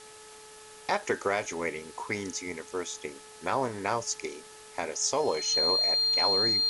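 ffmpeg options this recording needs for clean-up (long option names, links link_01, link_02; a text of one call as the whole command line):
ffmpeg -i in.wav -af "bandreject=frequency=430.5:width_type=h:width=4,bandreject=frequency=861:width_type=h:width=4,bandreject=frequency=1291.5:width_type=h:width=4,bandreject=frequency=1722:width_type=h:width=4,bandreject=frequency=4200:width=30,afwtdn=0.0035" out.wav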